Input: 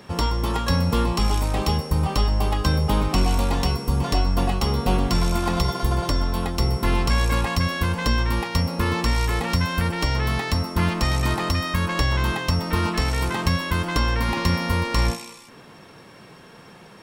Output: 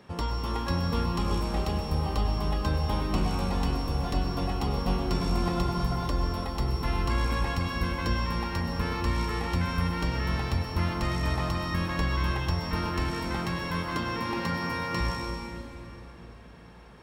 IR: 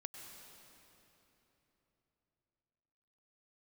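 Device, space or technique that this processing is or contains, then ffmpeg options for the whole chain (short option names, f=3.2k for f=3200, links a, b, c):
swimming-pool hall: -filter_complex "[0:a]asettb=1/sr,asplit=3[a][b][c];[a]atrim=end=13.104[d];[b]atrim=start=13.1:end=15.01,asetpts=PTS-STARTPTS,afade=t=in:d=0.004:c=qsin,afade=t=out:st=1.906:d=0.004:c=qsin,highpass=f=110:w=0.5412,highpass=f=110:w=1.3066[e];[c]atrim=start=15.006[f];[d][e]acrossfade=d=0.004:c1=hsin:c2=qsin[g];[g][f]acrossfade=d=0.004:c1=qsin:c2=hsin[h];[1:a]atrim=start_sample=2205[i];[h][i]afir=irnorm=-1:irlink=0,highshelf=f=4.8k:g=-7,volume=-2.5dB"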